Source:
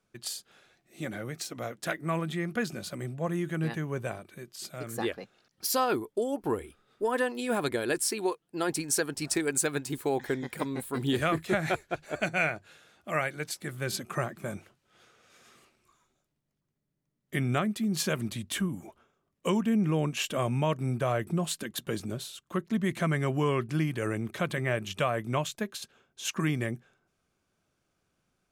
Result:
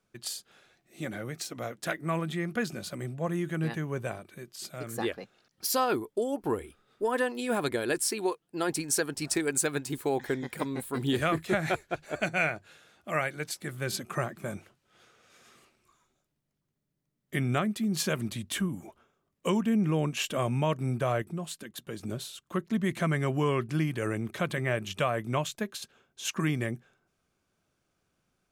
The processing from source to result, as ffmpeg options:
-filter_complex "[0:a]asplit=3[a][b][c];[a]atrim=end=21.222[d];[b]atrim=start=21.218:end=22.032,asetpts=PTS-STARTPTS,volume=-6.5dB[e];[c]atrim=start=22.028[f];[d][e]acrossfade=d=0.004:c1=hsin:c2=hsin[g];[g][f]acrossfade=d=0.004:c1=hsin:c2=hsin"

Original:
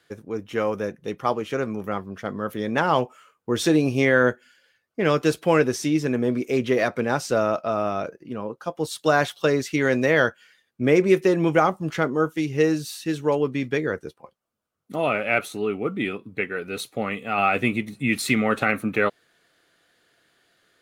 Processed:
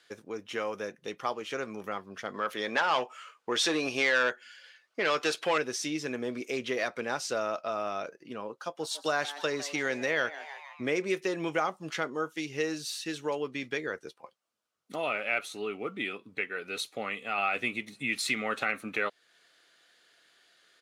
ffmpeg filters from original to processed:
-filter_complex "[0:a]asettb=1/sr,asplit=3[a][b][c];[a]atrim=end=2.344[d];[b]atrim=start=2.34:end=5.58,asetpts=PTS-STARTPTS,afade=t=in:d=0.004:c=qsin,afade=t=out:st=3.236:d=0.004:c=qsin,asplit=2[e][f];[f]highpass=f=720:p=1,volume=15dB,asoftclip=type=tanh:threshold=-6dB[g];[e][g]amix=inputs=2:normalize=0,lowpass=f=4.3k:p=1,volume=-6dB[h];[c]atrim=start=5.576[i];[d][h]acrossfade=d=0.004:c1=hsin:c2=qsin[j];[j][i]acrossfade=d=0.004:c1=qsin:c2=hsin,asplit=3[k][l][m];[k]afade=t=out:st=8.78:d=0.02[n];[l]asplit=5[o][p][q][r][s];[p]adelay=153,afreqshift=140,volume=-17.5dB[t];[q]adelay=306,afreqshift=280,volume=-23.3dB[u];[r]adelay=459,afreqshift=420,volume=-29.2dB[v];[s]adelay=612,afreqshift=560,volume=-35dB[w];[o][t][u][v][w]amix=inputs=5:normalize=0,afade=t=in:st=8.78:d=0.02,afade=t=out:st=10.94:d=0.02[x];[m]afade=t=in:st=10.94:d=0.02[y];[n][x][y]amix=inputs=3:normalize=0,lowpass=4.9k,aemphasis=mode=production:type=riaa,acompressor=threshold=-36dB:ratio=1.5,volume=-2dB"

